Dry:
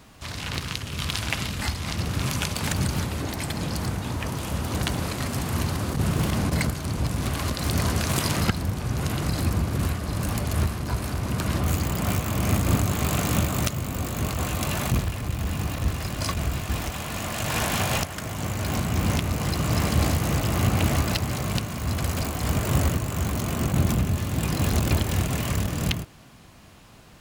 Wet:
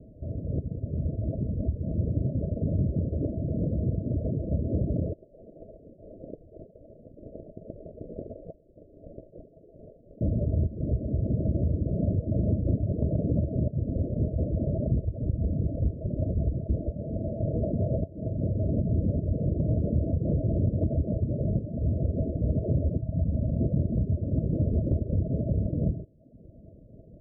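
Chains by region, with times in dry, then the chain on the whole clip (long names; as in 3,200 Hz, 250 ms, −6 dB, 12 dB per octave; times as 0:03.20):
0:05.13–0:10.21: double-tracking delay 15 ms −12.5 dB + voice inversion scrambler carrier 3,700 Hz
0:23.01–0:23.60: parametric band 390 Hz −13 dB 0.75 octaves + flutter between parallel walls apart 11.5 metres, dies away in 0.82 s
whole clip: reverb reduction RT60 0.75 s; Chebyshev low-pass filter 660 Hz, order 10; downward compressor, threshold −26 dBFS; level +4.5 dB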